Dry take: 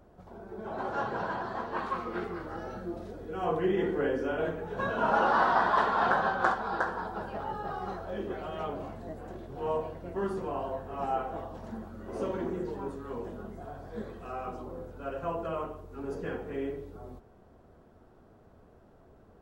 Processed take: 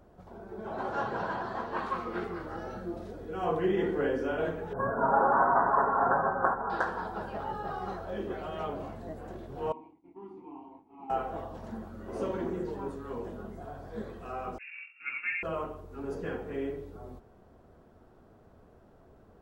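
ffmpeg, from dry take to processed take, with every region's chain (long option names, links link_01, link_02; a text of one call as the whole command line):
ffmpeg -i in.wav -filter_complex "[0:a]asettb=1/sr,asplit=3[link_01][link_02][link_03];[link_01]atrim=end=4.734[link_04];[link_02]atrim=start=4.73:end=6.7,asetpts=PTS-STARTPTS,afade=type=in:duration=0.004:curve=qsin,afade=type=out:start_time=1.966:duration=0.004:curve=qsin,asuperstop=centerf=3800:order=8:qfactor=0.52,aecho=1:1:7.3:0.44,atrim=end_sample=86877,adynamicequalizer=threshold=0.00631:dfrequency=3100:dqfactor=0.7:tfrequency=3100:tqfactor=0.7:attack=5:release=100:ratio=0.375:range=3.5:mode=cutabove:tftype=highshelf[link_05];[link_03]atrim=start=6.696[link_06];[link_04][link_05]acrossfade=duration=0.004:curve1=hsin:curve2=qsin[link_07];[link_07][link_06]acrossfade=duration=0.004:curve1=qsin:curve2=hsin,asettb=1/sr,asplit=3[link_08][link_09][link_10];[link_08]atrim=end=9.724[link_11];[link_09]atrim=start=9.72:end=11.1,asetpts=PTS-STARTPTS,afade=type=in:duration=0.004:curve=qsin,afade=type=out:start_time=1.376:duration=0.004:curve=qsin,agate=range=-33dB:threshold=-37dB:ratio=3:release=100:detection=peak,asplit=3[link_12][link_13][link_14];[link_12]bandpass=frequency=300:width_type=q:width=8,volume=0dB[link_15];[link_13]bandpass=frequency=870:width_type=q:width=8,volume=-6dB[link_16];[link_14]bandpass=frequency=2240:width_type=q:width=8,volume=-9dB[link_17];[link_15][link_16][link_17]amix=inputs=3:normalize=0[link_18];[link_10]atrim=start=11.096[link_19];[link_11][link_18]acrossfade=duration=0.004:curve1=hsin:curve2=qsin[link_20];[link_20][link_19]acrossfade=duration=0.004:curve1=qsin:curve2=hsin,asettb=1/sr,asplit=3[link_21][link_22][link_23];[link_21]atrim=end=14.584[link_24];[link_22]atrim=start=14.58:end=15.43,asetpts=PTS-STARTPTS,afade=type=in:duration=0.004:curve=qsin,afade=type=out:start_time=0.846:duration=0.004:curve=qsin,agate=range=-33dB:threshold=-37dB:ratio=3:release=100:detection=peak,lowpass=frequency=2400:width_type=q:width=0.5098,lowpass=frequency=2400:width_type=q:width=0.6013,lowpass=frequency=2400:width_type=q:width=0.9,lowpass=frequency=2400:width_type=q:width=2.563,afreqshift=-2800[link_25];[link_23]atrim=start=15.426[link_26];[link_24][link_25]acrossfade=duration=0.004:curve1=hsin:curve2=qsin[link_27];[link_27][link_26]acrossfade=duration=0.004:curve1=qsin:curve2=hsin" out.wav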